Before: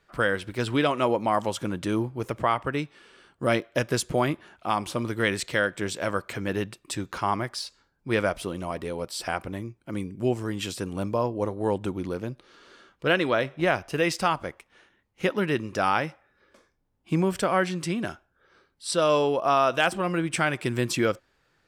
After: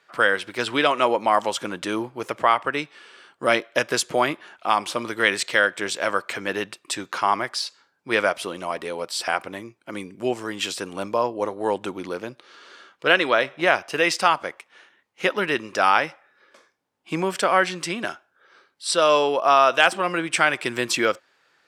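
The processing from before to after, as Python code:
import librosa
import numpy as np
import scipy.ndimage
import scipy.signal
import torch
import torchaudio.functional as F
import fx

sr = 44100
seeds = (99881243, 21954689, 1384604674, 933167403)

y = fx.weighting(x, sr, curve='A')
y = y * 10.0 ** (6.0 / 20.0)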